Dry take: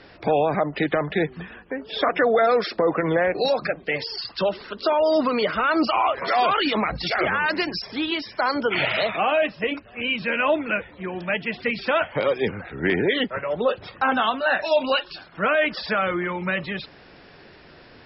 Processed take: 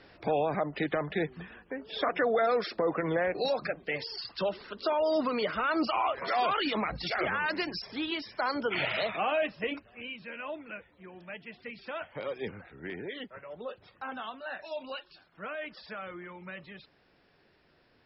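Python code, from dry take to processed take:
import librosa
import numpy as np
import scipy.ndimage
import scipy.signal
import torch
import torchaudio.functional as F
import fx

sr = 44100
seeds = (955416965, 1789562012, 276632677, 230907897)

y = fx.gain(x, sr, db=fx.line((9.77, -8.0), (10.17, -18.0), (11.8, -18.0), (12.56, -12.0), (12.83, -18.0)))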